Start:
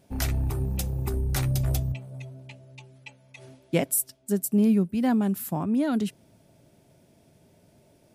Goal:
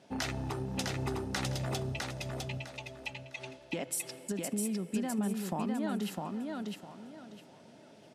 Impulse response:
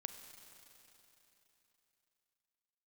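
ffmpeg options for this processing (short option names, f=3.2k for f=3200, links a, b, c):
-filter_complex "[0:a]highpass=230,lowpass=5.4k,bandreject=f=2.3k:w=19,asplit=2[a][b];[b]aecho=1:1:2.3:0.65[c];[1:a]atrim=start_sample=2205[d];[c][d]afir=irnorm=-1:irlink=0,volume=-11.5dB[e];[a][e]amix=inputs=2:normalize=0,alimiter=limit=-22.5dB:level=0:latency=1,acompressor=threshold=-34dB:ratio=6,equalizer=f=370:w=1.1:g=-4.5,aecho=1:1:655|1310|1965|2620:0.708|0.184|0.0479|0.0124,volume=4dB"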